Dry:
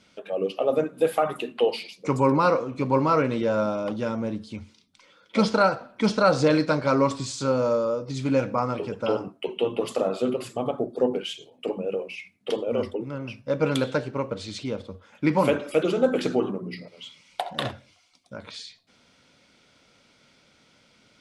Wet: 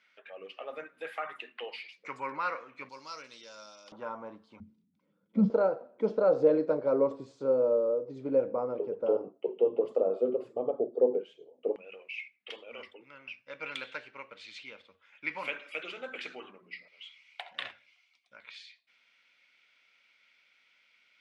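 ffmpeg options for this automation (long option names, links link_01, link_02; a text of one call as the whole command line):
ffmpeg -i in.wav -af "asetnsamples=nb_out_samples=441:pad=0,asendcmd='2.89 bandpass f 5200;3.92 bandpass f 1000;4.6 bandpass f 190;5.5 bandpass f 470;11.76 bandpass f 2300',bandpass=frequency=1900:width_type=q:width=2.7:csg=0" out.wav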